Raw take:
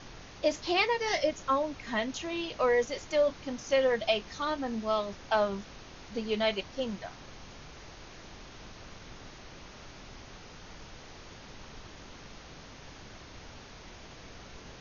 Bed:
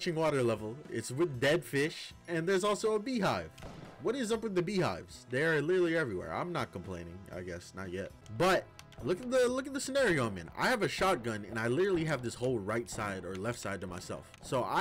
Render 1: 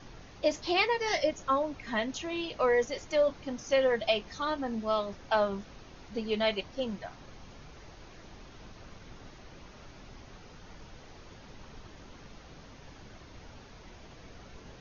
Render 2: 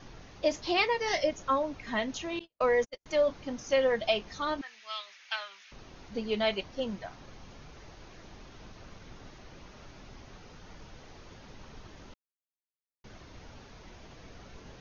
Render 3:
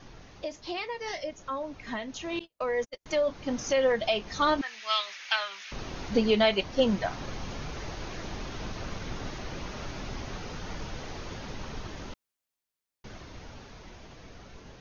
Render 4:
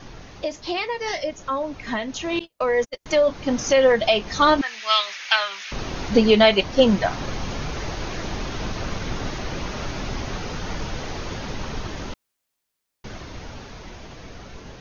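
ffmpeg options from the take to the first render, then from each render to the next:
ffmpeg -i in.wav -af "afftdn=noise_reduction=6:noise_floor=-49" out.wav
ffmpeg -i in.wav -filter_complex "[0:a]asettb=1/sr,asplit=3[link_01][link_02][link_03];[link_01]atrim=end=2.394[link_04];[link_02]atrim=start=2.39:end=3.06,asetpts=PTS-STARTPTS,afade=type=in:duration=0.004:curve=qsin,afade=type=out:start_time=0.666:duration=0.004:curve=qsin,agate=range=-49dB:threshold=-33dB:ratio=16:release=100:detection=peak[link_05];[link_03]atrim=start=3.056[link_06];[link_04][link_05]acrossfade=duration=0.004:curve1=hsin:curve2=qsin[link_07];[link_07][link_06]acrossfade=duration=0.004:curve1=qsin:curve2=hsin,asettb=1/sr,asplit=3[link_08][link_09][link_10];[link_08]atrim=end=4.614[link_11];[link_09]atrim=start=4.61:end=5.72,asetpts=PTS-STARTPTS,afade=type=in:duration=0.004:curve=qsin,afade=type=out:start_time=1.106:duration=0.004:curve=qsin,highpass=frequency=2200:width_type=q:width=2.1[link_12];[link_10]atrim=start=5.716[link_13];[link_11][link_12]acrossfade=duration=0.004:curve1=hsin:curve2=qsin[link_14];[link_14][link_13]acrossfade=duration=0.004:curve1=qsin:curve2=hsin,asplit=3[link_15][link_16][link_17];[link_15]atrim=end=12.14,asetpts=PTS-STARTPTS,afade=type=out:start_time=12.136:duration=0.004:curve=hsin[link_18];[link_16]atrim=start=12.14:end=13.04,asetpts=PTS-STARTPTS,volume=0[link_19];[link_17]atrim=start=13.04,asetpts=PTS-STARTPTS,afade=type=in:duration=0.004:curve=hsin[link_20];[link_18][link_19][link_20]concat=n=3:v=0:a=1" out.wav
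ffmpeg -i in.wav -af "alimiter=level_in=1.5dB:limit=-24dB:level=0:latency=1:release=432,volume=-1.5dB,dynaudnorm=framelen=670:gausssize=11:maxgain=12.5dB" out.wav
ffmpeg -i in.wav -af "volume=8.5dB" out.wav

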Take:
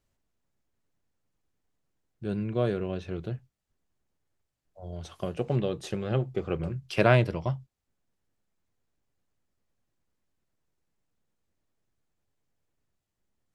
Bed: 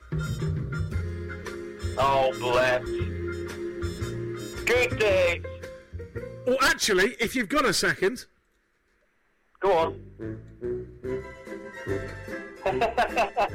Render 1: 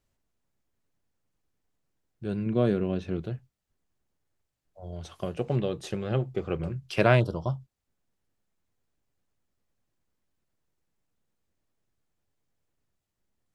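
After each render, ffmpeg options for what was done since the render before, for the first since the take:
ffmpeg -i in.wav -filter_complex "[0:a]asettb=1/sr,asplit=3[link_01][link_02][link_03];[link_01]atrim=end=2.464[link_04];[link_02]atrim=start=2.46:end=3.22,asetpts=PTS-STARTPTS,afade=type=in:duration=0.004:curve=qsin,afade=type=out:start_time=0.756:duration=0.004:curve=qsin,equalizer=frequency=230:width=1.3:gain=8[link_05];[link_03]atrim=start=3.216[link_06];[link_04][link_05]acrossfade=duration=0.004:curve1=hsin:curve2=qsin[link_07];[link_07][link_06]acrossfade=duration=0.004:curve1=qsin:curve2=hsin,asplit=3[link_08][link_09][link_10];[link_08]afade=type=out:start_time=7.19:duration=0.02[link_11];[link_09]asuperstop=centerf=2100:order=8:qfactor=1.2,afade=type=in:start_time=7.19:duration=0.02,afade=type=out:start_time=7.59:duration=0.02[link_12];[link_10]afade=type=in:start_time=7.59:duration=0.02[link_13];[link_11][link_12][link_13]amix=inputs=3:normalize=0" out.wav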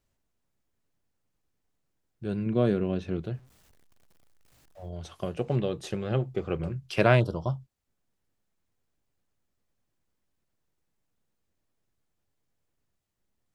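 ffmpeg -i in.wav -filter_complex "[0:a]asettb=1/sr,asplit=3[link_01][link_02][link_03];[link_01]atrim=end=3.344[link_04];[link_02]atrim=start=3.34:end=4.89,asetpts=PTS-STARTPTS,afade=type=in:duration=0.004:curve=qsin,afade=type=out:start_time=1.546:duration=0.004:curve=qsin,aeval=exprs='val(0)+0.5*0.00178*sgn(val(0))':channel_layout=same[link_05];[link_03]atrim=start=4.886[link_06];[link_04][link_05]acrossfade=duration=0.004:curve1=hsin:curve2=qsin[link_07];[link_07][link_06]acrossfade=duration=0.004:curve1=qsin:curve2=hsin" out.wav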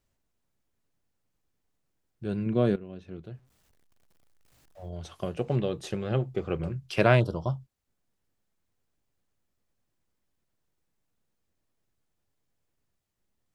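ffmpeg -i in.wav -filter_complex "[0:a]asplit=2[link_01][link_02];[link_01]atrim=end=2.76,asetpts=PTS-STARTPTS,afade=type=out:start_time=2.756:duration=0.004:curve=hsin:silence=0.158489[link_03];[link_02]atrim=start=2.76,asetpts=PTS-STARTPTS,afade=type=in:duration=2.17:silence=0.158489[link_04];[link_03][link_04]concat=n=2:v=0:a=1" out.wav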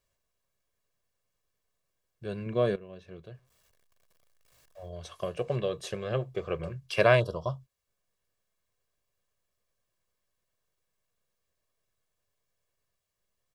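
ffmpeg -i in.wav -af "lowshelf=frequency=290:gain=-8.5,aecho=1:1:1.8:0.57" out.wav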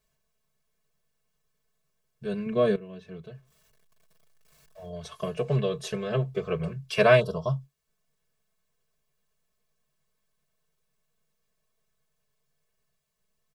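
ffmpeg -i in.wav -af "equalizer=frequency=140:width_type=o:width=0.41:gain=13.5,aecho=1:1:4.6:0.94" out.wav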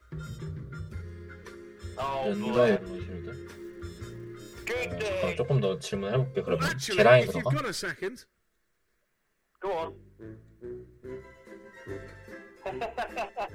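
ffmpeg -i in.wav -i bed.wav -filter_complex "[1:a]volume=-9.5dB[link_01];[0:a][link_01]amix=inputs=2:normalize=0" out.wav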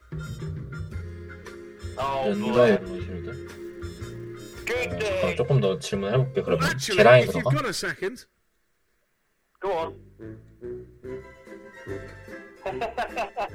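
ffmpeg -i in.wav -af "volume=4.5dB,alimiter=limit=-2dB:level=0:latency=1" out.wav

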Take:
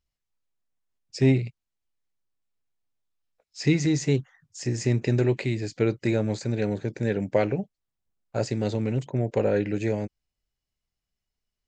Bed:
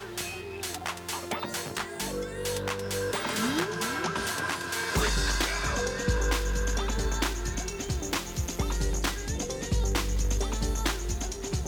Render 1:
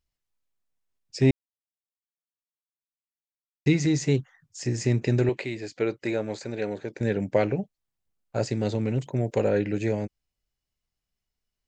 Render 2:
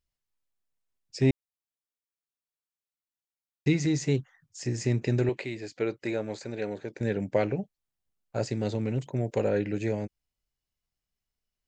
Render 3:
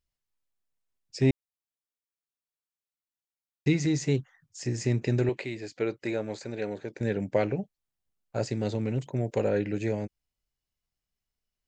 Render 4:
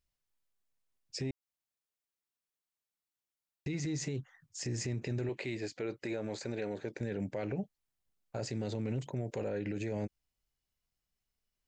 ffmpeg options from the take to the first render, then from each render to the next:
ffmpeg -i in.wav -filter_complex "[0:a]asettb=1/sr,asplit=3[link_01][link_02][link_03];[link_01]atrim=end=5.294[link_04];[link_02]atrim=start=5.29:end=7.01,asetpts=PTS-STARTPTS,afade=type=in:duration=0.004:curve=qsin,afade=type=out:start_time=1.716:duration=0.004:curve=qsin,bass=frequency=250:gain=-12,treble=frequency=4000:gain=-4[link_05];[link_03]atrim=start=7.006[link_06];[link_04][link_05]acrossfade=duration=0.004:curve1=hsin:curve2=qsin[link_07];[link_07][link_06]acrossfade=duration=0.004:curve1=qsin:curve2=hsin,asettb=1/sr,asplit=3[link_08][link_09][link_10];[link_08]atrim=end=9.054[link_11];[link_09]atrim=start=9.05:end=9.49,asetpts=PTS-STARTPTS,afade=type=in:duration=0.004:curve=qsin,afade=type=out:start_time=0.436:duration=0.004:curve=qsin,aemphasis=mode=production:type=cd[link_12];[link_10]atrim=start=9.486[link_13];[link_11][link_12]acrossfade=duration=0.004:curve1=hsin:curve2=qsin[link_14];[link_14][link_13]acrossfade=duration=0.004:curve1=qsin:curve2=hsin,asplit=3[link_15][link_16][link_17];[link_15]atrim=end=1.31,asetpts=PTS-STARTPTS,afade=type=out:start_time=1.306:duration=0.004:curve=hsin[link_18];[link_16]atrim=start=1.31:end=3.66,asetpts=PTS-STARTPTS,volume=0[link_19];[link_17]atrim=start=3.66,asetpts=PTS-STARTPTS,afade=type=in:duration=0.004:curve=hsin[link_20];[link_18][link_19][link_20]concat=n=3:v=0:a=1" out.wav
ffmpeg -i in.wav -af "volume=-3dB" out.wav
ffmpeg -i in.wav -af anull out.wav
ffmpeg -i in.wav -af "acompressor=threshold=-27dB:ratio=4,alimiter=level_in=4dB:limit=-24dB:level=0:latency=1:release=37,volume=-4dB" out.wav

